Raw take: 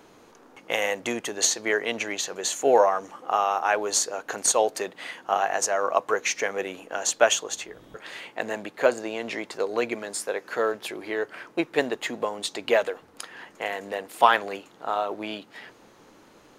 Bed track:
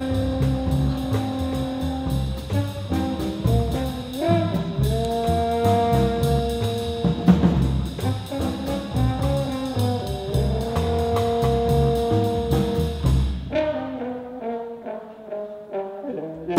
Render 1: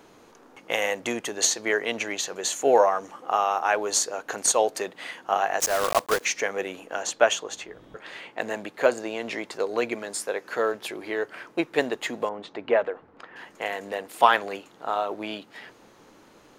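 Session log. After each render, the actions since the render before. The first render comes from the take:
0:05.60–0:06.27: one scale factor per block 3 bits
0:07.02–0:08.38: high-shelf EQ 5,900 Hz −10 dB
0:12.29–0:13.36: low-pass filter 1,800 Hz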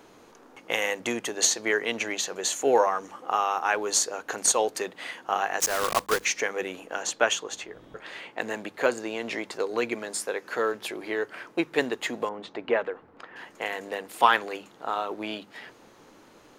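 mains-hum notches 50/100/150/200 Hz
dynamic equaliser 640 Hz, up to −7 dB, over −37 dBFS, Q 2.8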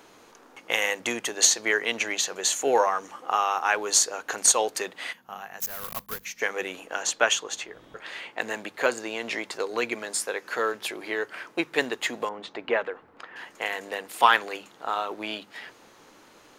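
tilt shelving filter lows −3.5 dB, about 720 Hz
0:05.13–0:06.42: gain on a spectral selection 240–11,000 Hz −14 dB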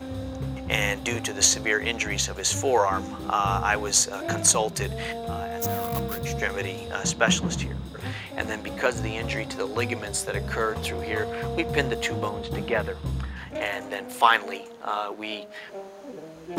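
mix in bed track −10.5 dB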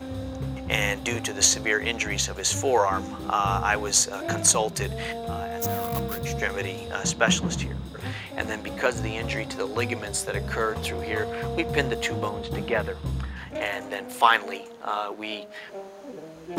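no processing that can be heard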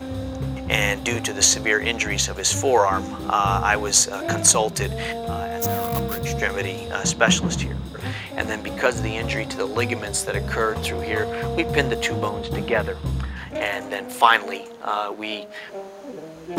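level +4 dB
brickwall limiter −1 dBFS, peak gain reduction 2 dB

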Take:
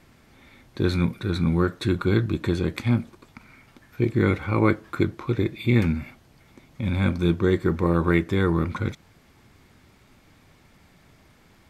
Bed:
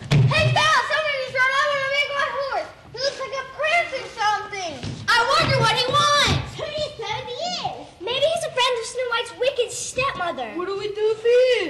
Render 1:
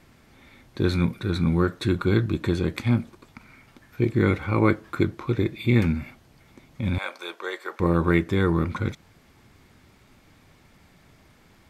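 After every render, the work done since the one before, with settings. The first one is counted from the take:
0:06.98–0:07.80: high-pass filter 570 Hz 24 dB per octave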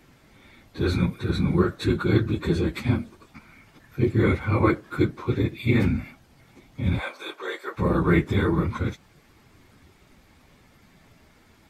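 random phases in long frames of 50 ms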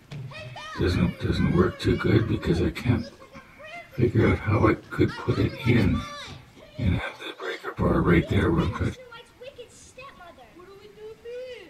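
mix in bed −21 dB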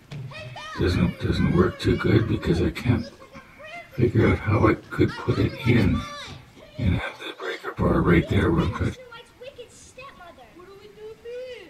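level +1.5 dB

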